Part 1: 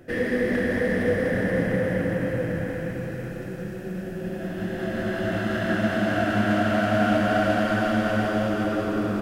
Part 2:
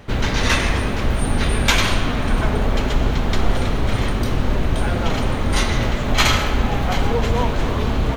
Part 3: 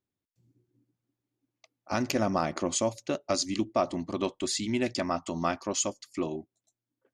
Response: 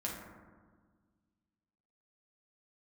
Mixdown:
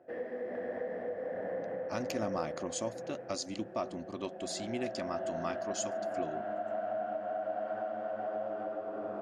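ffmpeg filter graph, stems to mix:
-filter_complex "[0:a]bandpass=f=680:t=q:w=3:csg=0,volume=-1dB[a];[2:a]volume=-9dB[b];[a]tremolo=f=1.3:d=0.36,acompressor=threshold=-34dB:ratio=4,volume=0dB[c];[b][c]amix=inputs=2:normalize=0"

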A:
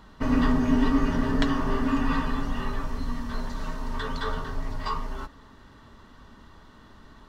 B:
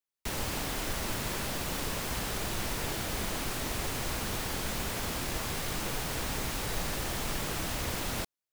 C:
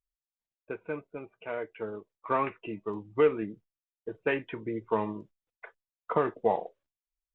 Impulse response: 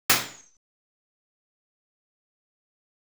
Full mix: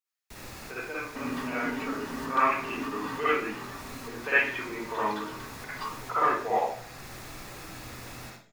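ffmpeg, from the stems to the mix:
-filter_complex "[0:a]lowshelf=f=200:g=-10.5,bandreject=f=640:w=12,adelay=950,volume=-5dB[a];[1:a]bandreject=f=3.1k:w=12,adelay=50,volume=-12dB,asplit=2[b][c];[c]volume=-18dB[d];[2:a]highpass=f=1.2k:p=1,volume=1.5dB,asplit=3[e][f][g];[f]volume=-12.5dB[h];[g]apad=whole_len=378341[i];[b][i]sidechaincompress=threshold=-49dB:ratio=8:attack=16:release=363[j];[a][e]amix=inputs=2:normalize=0,highpass=140,alimiter=level_in=0.5dB:limit=-24dB:level=0:latency=1:release=398,volume=-0.5dB,volume=0dB[k];[3:a]atrim=start_sample=2205[l];[d][h]amix=inputs=2:normalize=0[m];[m][l]afir=irnorm=-1:irlink=0[n];[j][k][n]amix=inputs=3:normalize=0"

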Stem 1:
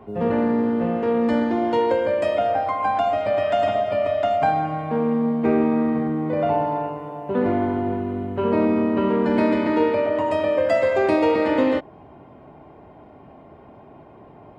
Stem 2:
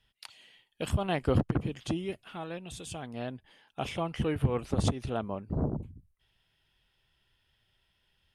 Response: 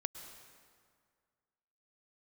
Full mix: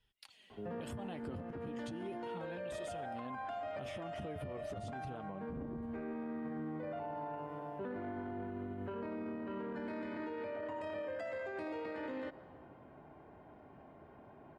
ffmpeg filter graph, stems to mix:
-filter_complex "[0:a]equalizer=f=1.6k:t=o:w=0.4:g=7.5,alimiter=limit=-15.5dB:level=0:latency=1:release=14,adelay=500,volume=-13dB,asplit=2[a][b];[b]volume=-14dB[c];[1:a]equalizer=f=220:t=o:w=2.7:g=4.5,flanger=delay=1.9:depth=10:regen=43:speed=0.34:shape=triangular,acompressor=threshold=-33dB:ratio=6,volume=-5dB,asplit=3[d][e][f];[e]volume=-16dB[g];[f]apad=whole_len=665381[h];[a][h]sidechaincompress=threshold=-54dB:ratio=4:attack=48:release=639[i];[2:a]atrim=start_sample=2205[j];[c][g]amix=inputs=2:normalize=0[k];[k][j]afir=irnorm=-1:irlink=0[l];[i][d][l]amix=inputs=3:normalize=0,alimiter=level_in=11dB:limit=-24dB:level=0:latency=1:release=56,volume=-11dB"

